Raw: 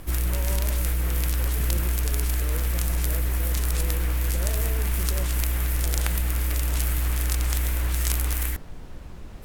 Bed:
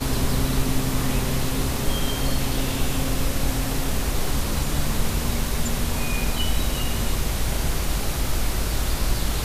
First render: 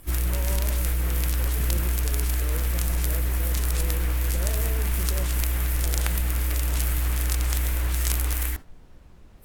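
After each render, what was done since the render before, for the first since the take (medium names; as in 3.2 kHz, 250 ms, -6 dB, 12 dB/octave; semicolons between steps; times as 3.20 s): noise print and reduce 10 dB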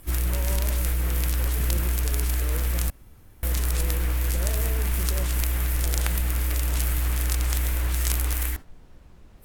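2.90–3.43 s: room tone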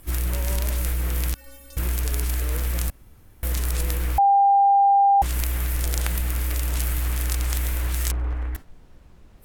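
1.34–1.77 s: inharmonic resonator 270 Hz, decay 0.43 s, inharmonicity 0.008; 4.18–5.22 s: bleep 797 Hz -13 dBFS; 8.11–8.55 s: low-pass 1.2 kHz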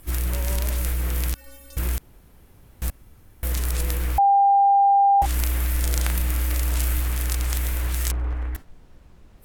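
1.98–2.82 s: room tone; 5.17–7.02 s: doubling 36 ms -6.5 dB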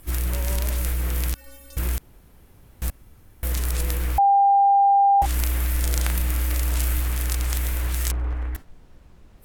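no audible change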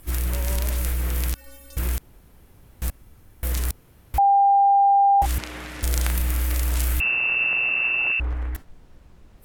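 3.71–4.14 s: room tone; 5.38–5.83 s: band-pass 180–4800 Hz; 7.00–8.20 s: frequency inversion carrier 2.7 kHz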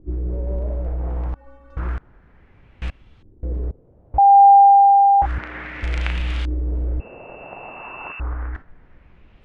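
Savitzky-Golay filter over 9 samples; LFO low-pass saw up 0.31 Hz 340–3500 Hz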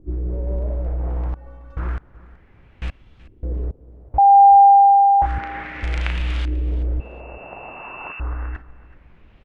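feedback delay 376 ms, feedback 21%, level -19.5 dB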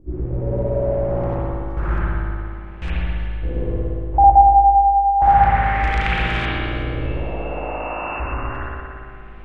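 filtered feedback delay 132 ms, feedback 56%, low-pass 1.6 kHz, level -4 dB; spring tank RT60 2.1 s, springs 57 ms, chirp 65 ms, DRR -7.5 dB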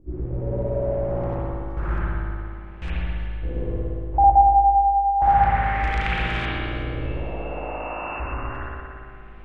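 trim -4 dB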